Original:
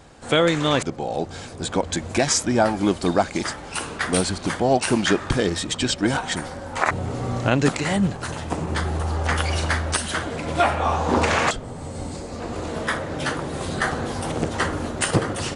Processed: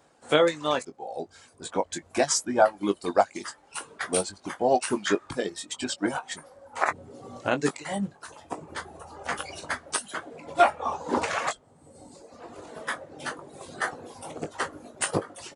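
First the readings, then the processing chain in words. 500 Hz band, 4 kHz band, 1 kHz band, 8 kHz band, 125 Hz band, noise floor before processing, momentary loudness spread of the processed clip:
-3.5 dB, -8.0 dB, -4.0 dB, -5.0 dB, -17.0 dB, -36 dBFS, 18 LU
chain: high-pass 940 Hz 6 dB/octave; tilt shelf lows +8 dB, about 1.4 kHz; reverb removal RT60 1.6 s; treble shelf 6.1 kHz +12 dB; doubling 20 ms -8 dB; upward expansion 1.5:1, over -34 dBFS

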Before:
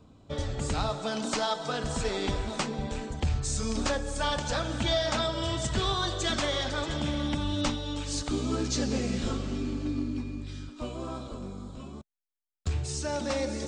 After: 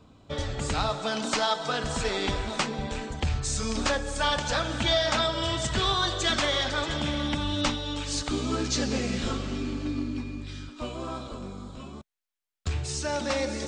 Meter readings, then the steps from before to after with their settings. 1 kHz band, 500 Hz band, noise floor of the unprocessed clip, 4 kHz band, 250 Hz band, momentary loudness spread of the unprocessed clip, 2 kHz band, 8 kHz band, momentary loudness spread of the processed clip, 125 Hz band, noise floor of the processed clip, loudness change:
+3.5 dB, +1.5 dB, -56 dBFS, +4.5 dB, +0.5 dB, 10 LU, +5.0 dB, +2.5 dB, 12 LU, 0.0 dB, -56 dBFS, +2.5 dB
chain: peaking EQ 2.2 kHz +5.5 dB 3 oct

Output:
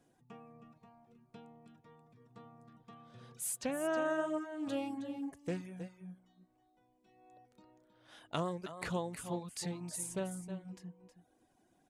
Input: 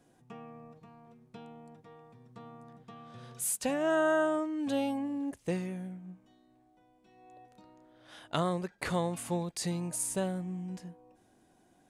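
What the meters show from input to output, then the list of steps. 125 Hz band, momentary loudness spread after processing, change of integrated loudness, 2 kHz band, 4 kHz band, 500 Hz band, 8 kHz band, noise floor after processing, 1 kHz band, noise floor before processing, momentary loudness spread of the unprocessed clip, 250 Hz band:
-6.5 dB, 22 LU, -6.5 dB, -6.5 dB, -6.0 dB, -6.5 dB, -6.0 dB, -73 dBFS, -6.5 dB, -66 dBFS, 22 LU, -6.5 dB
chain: delay 317 ms -10 dB; reverb removal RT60 0.64 s; loudspeaker Doppler distortion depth 0.14 ms; trim -5 dB

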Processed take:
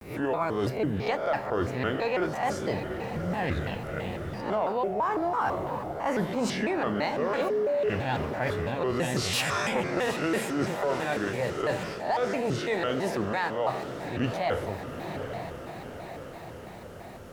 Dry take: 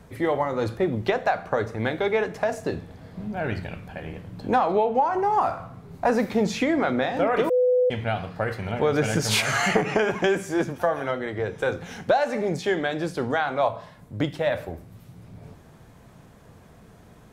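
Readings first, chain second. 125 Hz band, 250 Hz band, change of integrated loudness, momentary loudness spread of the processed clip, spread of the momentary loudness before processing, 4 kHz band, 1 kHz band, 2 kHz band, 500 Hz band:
-2.0 dB, -3.5 dB, -4.5 dB, 9 LU, 13 LU, -3.0 dB, -4.0 dB, -4.0 dB, -4.5 dB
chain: reverse spectral sustain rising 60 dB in 0.40 s; word length cut 10-bit, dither none; on a send: echo that smears into a reverb 844 ms, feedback 61%, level -13.5 dB; on the sum: reverse; compression 10:1, threshold -24 dBFS, peak gain reduction 12.5 dB; reverse; vibrato with a chosen wave square 3 Hz, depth 250 cents

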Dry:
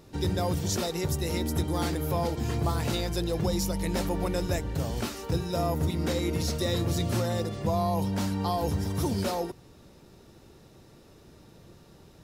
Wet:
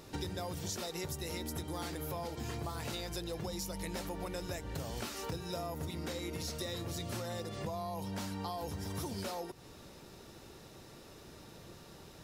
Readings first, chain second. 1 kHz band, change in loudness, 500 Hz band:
-9.5 dB, -11.0 dB, -10.5 dB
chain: bass shelf 490 Hz -7 dB; compression 10:1, threshold -41 dBFS, peak gain reduction 14 dB; trim +4.5 dB

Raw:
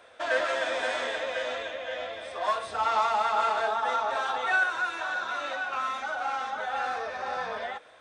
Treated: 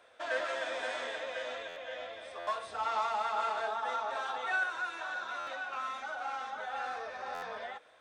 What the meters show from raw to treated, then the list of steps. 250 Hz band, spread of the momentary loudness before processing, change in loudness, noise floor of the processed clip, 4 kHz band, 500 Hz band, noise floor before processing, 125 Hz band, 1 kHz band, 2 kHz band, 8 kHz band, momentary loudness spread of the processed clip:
-8.0 dB, 9 LU, -7.0 dB, -56 dBFS, -7.0 dB, -7.5 dB, -49 dBFS, no reading, -7.0 dB, -7.0 dB, -7.0 dB, 9 LU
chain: bass shelf 180 Hz -3.5 dB; buffer glitch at 1.68/2.39/5.39/7.34 s, samples 512, times 6; trim -7 dB

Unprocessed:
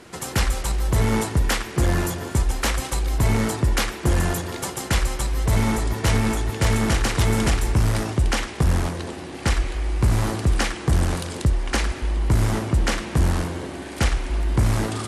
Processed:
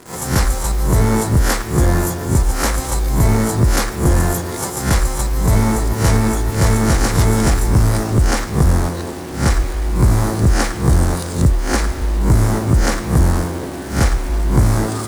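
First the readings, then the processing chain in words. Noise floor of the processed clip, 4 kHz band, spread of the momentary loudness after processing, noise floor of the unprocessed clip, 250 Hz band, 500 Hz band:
-26 dBFS, +1.5 dB, 5 LU, -35 dBFS, +7.0 dB, +6.5 dB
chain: reverse spectral sustain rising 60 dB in 0.40 s; peaking EQ 2.9 kHz -11 dB 0.91 oct; in parallel at 0 dB: word length cut 6-bit, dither none; on the sum: trim -1 dB

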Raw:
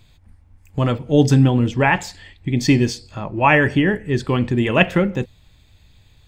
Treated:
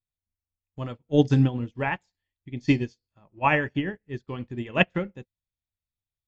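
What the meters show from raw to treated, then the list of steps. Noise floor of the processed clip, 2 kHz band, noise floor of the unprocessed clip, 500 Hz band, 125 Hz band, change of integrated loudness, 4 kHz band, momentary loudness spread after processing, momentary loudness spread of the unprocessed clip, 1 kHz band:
under -85 dBFS, -9.0 dB, -53 dBFS, -9.0 dB, -9.0 dB, -8.0 dB, -9.5 dB, 15 LU, 15 LU, -8.5 dB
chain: resampled via 16 kHz; upward expansion 2.5:1, over -36 dBFS; trim -3.5 dB

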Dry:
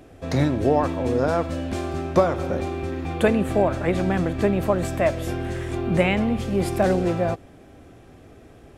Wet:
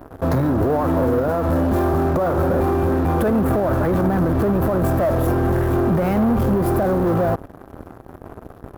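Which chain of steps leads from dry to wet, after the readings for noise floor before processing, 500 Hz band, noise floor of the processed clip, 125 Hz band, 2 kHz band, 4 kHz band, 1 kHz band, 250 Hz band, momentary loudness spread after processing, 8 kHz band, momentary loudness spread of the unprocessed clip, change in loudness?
-48 dBFS, +3.0 dB, -43 dBFS, +5.5 dB, -1.0 dB, no reading, +4.0 dB, +5.0 dB, 1 LU, -1.0 dB, 8 LU, +4.0 dB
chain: in parallel at -6 dB: fuzz box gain 39 dB, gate -43 dBFS; on the sum: high-order bell 4.3 kHz -15.5 dB 2.5 oct; peak limiter -12.5 dBFS, peak gain reduction 9.5 dB

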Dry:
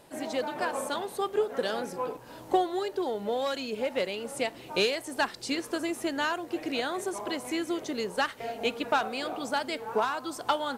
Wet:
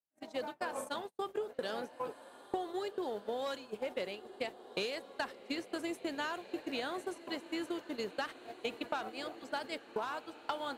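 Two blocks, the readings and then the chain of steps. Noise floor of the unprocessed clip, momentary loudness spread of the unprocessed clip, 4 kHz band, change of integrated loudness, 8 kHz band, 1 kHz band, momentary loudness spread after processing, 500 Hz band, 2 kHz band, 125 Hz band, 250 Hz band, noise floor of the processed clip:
-47 dBFS, 5 LU, -9.0 dB, -9.0 dB, -12.5 dB, -9.5 dB, 4 LU, -8.5 dB, -9.0 dB, -10.0 dB, -8.5 dB, -57 dBFS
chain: gate -32 dBFS, range -46 dB; compression, threshold -28 dBFS, peak gain reduction 9 dB; on a send: echo that smears into a reverb 1538 ms, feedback 52%, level -15 dB; on the sum: trim -5 dB

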